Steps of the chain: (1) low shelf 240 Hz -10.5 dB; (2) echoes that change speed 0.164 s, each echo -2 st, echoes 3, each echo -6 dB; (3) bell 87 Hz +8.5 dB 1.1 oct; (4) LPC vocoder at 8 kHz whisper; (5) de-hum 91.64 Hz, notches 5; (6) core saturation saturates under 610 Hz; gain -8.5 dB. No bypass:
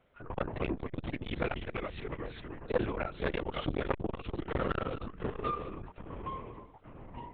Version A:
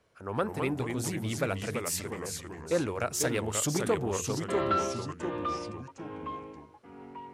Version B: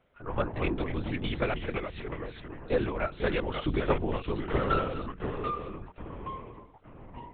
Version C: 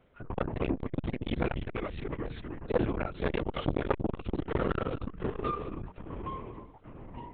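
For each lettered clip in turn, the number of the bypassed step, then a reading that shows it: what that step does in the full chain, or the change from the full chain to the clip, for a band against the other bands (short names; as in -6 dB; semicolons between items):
4, 4 kHz band +3.0 dB; 6, crest factor change -4.5 dB; 1, 250 Hz band +3.5 dB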